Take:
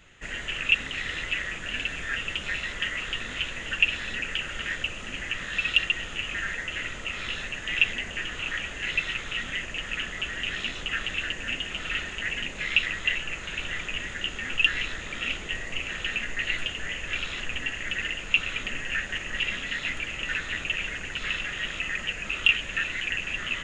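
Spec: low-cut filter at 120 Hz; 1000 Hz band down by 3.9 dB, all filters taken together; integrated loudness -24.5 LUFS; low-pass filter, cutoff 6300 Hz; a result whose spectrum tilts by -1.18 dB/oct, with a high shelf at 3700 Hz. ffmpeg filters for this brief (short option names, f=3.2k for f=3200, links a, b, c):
-af "highpass=120,lowpass=6.3k,equalizer=f=1k:t=o:g=-6.5,highshelf=f=3.7k:g=3.5,volume=3.5dB"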